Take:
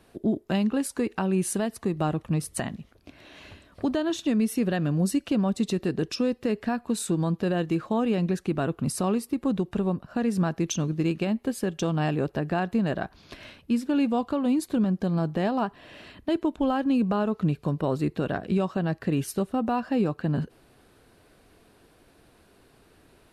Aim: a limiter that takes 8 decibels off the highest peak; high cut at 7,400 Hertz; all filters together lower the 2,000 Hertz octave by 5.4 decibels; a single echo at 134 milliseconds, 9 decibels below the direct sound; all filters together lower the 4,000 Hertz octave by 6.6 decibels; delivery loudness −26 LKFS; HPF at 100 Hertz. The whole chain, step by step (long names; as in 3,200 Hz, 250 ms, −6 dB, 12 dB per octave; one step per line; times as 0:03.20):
high-pass filter 100 Hz
low-pass filter 7,400 Hz
parametric band 2,000 Hz −6 dB
parametric band 4,000 Hz −6.5 dB
brickwall limiter −22 dBFS
single-tap delay 134 ms −9 dB
level +4.5 dB